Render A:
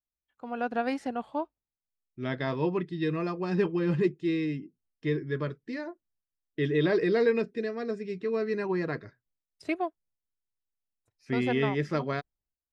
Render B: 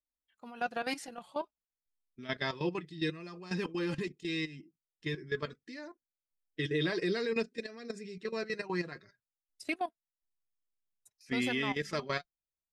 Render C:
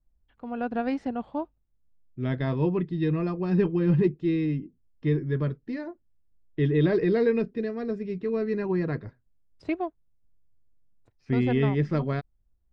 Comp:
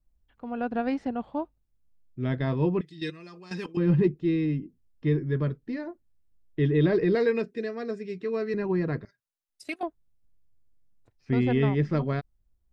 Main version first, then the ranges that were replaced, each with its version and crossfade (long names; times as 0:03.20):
C
0:02.81–0:03.77: punch in from B
0:07.15–0:08.54: punch in from A
0:09.05–0:09.83: punch in from B